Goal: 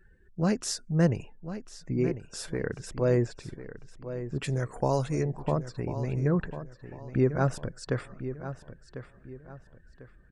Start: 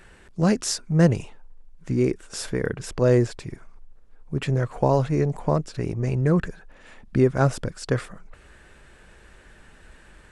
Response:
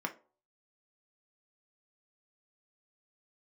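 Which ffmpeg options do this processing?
-filter_complex "[0:a]asettb=1/sr,asplit=3[link_01][link_02][link_03];[link_01]atrim=end=4.444[link_04];[link_02]atrim=start=4.44:end=5.23,asetpts=PTS-STARTPTS,afade=type=in:duration=0.004:curve=qsin,afade=type=out:start_time=0.786:duration=0.004:curve=qsin,aemphasis=mode=production:type=75fm[link_05];[link_03]atrim=start=5.226[link_06];[link_04][link_05]acrossfade=duration=0.004:curve1=hsin:curve2=qsin[link_07];[link_07][link_06]acrossfade=duration=0.004:curve1=qsin:curve2=hsin,afftdn=noise_reduction=24:noise_floor=-46,asplit=2[link_08][link_09];[link_09]adelay=1047,lowpass=frequency=4300:poles=1,volume=-11.5dB,asplit=2[link_10][link_11];[link_11]adelay=1047,lowpass=frequency=4300:poles=1,volume=0.34,asplit=2[link_12][link_13];[link_13]adelay=1047,lowpass=frequency=4300:poles=1,volume=0.34,asplit=2[link_14][link_15];[link_15]adelay=1047,lowpass=frequency=4300:poles=1,volume=0.34[link_16];[link_08][link_10][link_12][link_14][link_16]amix=inputs=5:normalize=0,volume=-6dB"

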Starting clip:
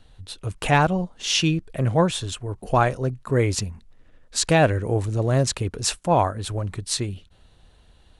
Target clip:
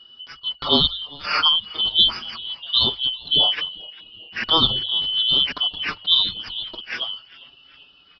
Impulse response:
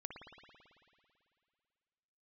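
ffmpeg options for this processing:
-filter_complex "[0:a]afftfilt=real='real(if(lt(b,272),68*(eq(floor(b/68),0)*1+eq(floor(b/68),1)*3+eq(floor(b/68),2)*0+eq(floor(b/68),3)*2)+mod(b,68),b),0)':imag='imag(if(lt(b,272),68*(eq(floor(b/68),0)*1+eq(floor(b/68),1)*3+eq(floor(b/68),2)*0+eq(floor(b/68),3)*2)+mod(b,68),b),0)':win_size=2048:overlap=0.75,highshelf=frequency=4300:gain=-11.5,bandreject=frequency=50:width_type=h:width=6,bandreject=frequency=100:width_type=h:width=6,aresample=11025,aresample=44100,asplit=5[link_01][link_02][link_03][link_04][link_05];[link_02]adelay=397,afreqshift=-120,volume=-22.5dB[link_06];[link_03]adelay=794,afreqshift=-240,volume=-27.2dB[link_07];[link_04]adelay=1191,afreqshift=-360,volume=-32dB[link_08];[link_05]adelay=1588,afreqshift=-480,volume=-36.7dB[link_09];[link_01][link_06][link_07][link_08][link_09]amix=inputs=5:normalize=0,asplit=2[link_10][link_11];[link_11]adelay=5.7,afreqshift=0.43[link_12];[link_10][link_12]amix=inputs=2:normalize=1,volume=7.5dB"

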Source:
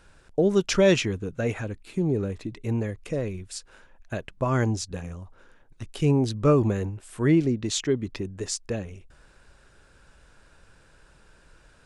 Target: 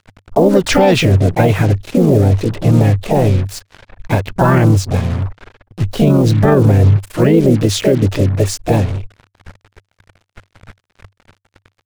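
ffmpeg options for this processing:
ffmpeg -i in.wav -filter_complex "[0:a]asplit=4[link_01][link_02][link_03][link_04];[link_02]asetrate=55563,aresample=44100,atempo=0.793701,volume=-14dB[link_05];[link_03]asetrate=58866,aresample=44100,atempo=0.749154,volume=-5dB[link_06];[link_04]asetrate=66075,aresample=44100,atempo=0.66742,volume=-6dB[link_07];[link_01][link_05][link_06][link_07]amix=inputs=4:normalize=0,lowpass=frequency=2300:poles=1,acrusher=bits=6:mix=0:aa=0.5,equalizer=frequency=98:width=4.2:gain=11,alimiter=level_in=15.5dB:limit=-1dB:release=50:level=0:latency=1,volume=-1dB" out.wav

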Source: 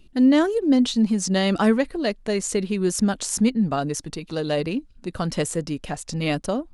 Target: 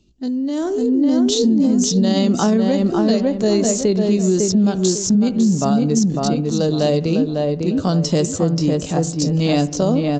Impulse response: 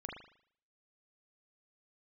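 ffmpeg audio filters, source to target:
-filter_complex "[0:a]highpass=42,atempo=0.66,equalizer=frequency=2000:width=0.62:gain=-14,asplit=2[link_01][link_02];[link_02]adelay=551,lowpass=frequency=1900:poles=1,volume=-3.5dB,asplit=2[link_03][link_04];[link_04]adelay=551,lowpass=frequency=1900:poles=1,volume=0.3,asplit=2[link_05][link_06];[link_06]adelay=551,lowpass=frequency=1900:poles=1,volume=0.3,asplit=2[link_07][link_08];[link_08]adelay=551,lowpass=frequency=1900:poles=1,volume=0.3[link_09];[link_01][link_03][link_05][link_07][link_09]amix=inputs=5:normalize=0,asplit=2[link_10][link_11];[1:a]atrim=start_sample=2205,asetrate=34839,aresample=44100[link_12];[link_11][link_12]afir=irnorm=-1:irlink=0,volume=-15.5dB[link_13];[link_10][link_13]amix=inputs=2:normalize=0,alimiter=limit=-14.5dB:level=0:latency=1:release=64,acrossover=split=94|5200[link_14][link_15][link_16];[link_14]acompressor=threshold=-53dB:ratio=4[link_17];[link_15]acompressor=threshold=-21dB:ratio=4[link_18];[link_16]acompressor=threshold=-41dB:ratio=4[link_19];[link_17][link_18][link_19]amix=inputs=3:normalize=0,highshelf=frequency=4500:gain=11,dynaudnorm=framelen=540:gausssize=3:maxgain=9.5dB" -ar 16000 -c:a libvorbis -b:a 64k

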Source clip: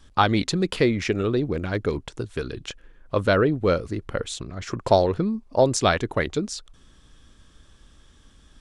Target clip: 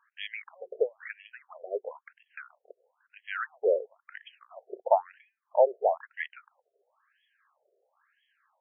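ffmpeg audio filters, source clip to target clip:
ffmpeg -i in.wav -af "aemphasis=mode=reproduction:type=75fm,afftfilt=real='re*between(b*sr/1024,500*pow(2400/500,0.5+0.5*sin(2*PI*1*pts/sr))/1.41,500*pow(2400/500,0.5+0.5*sin(2*PI*1*pts/sr))*1.41)':imag='im*between(b*sr/1024,500*pow(2400/500,0.5+0.5*sin(2*PI*1*pts/sr))/1.41,500*pow(2400/500,0.5+0.5*sin(2*PI*1*pts/sr))*1.41)':win_size=1024:overlap=0.75,volume=-2.5dB" out.wav

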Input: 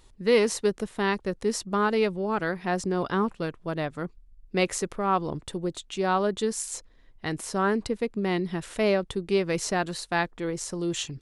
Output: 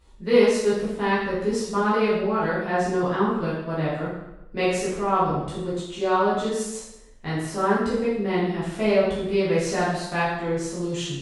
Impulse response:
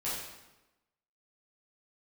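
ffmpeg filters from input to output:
-filter_complex "[0:a]highshelf=frequency=4400:gain=-6.5[link_01];[1:a]atrim=start_sample=2205,asetrate=48510,aresample=44100[link_02];[link_01][link_02]afir=irnorm=-1:irlink=0"

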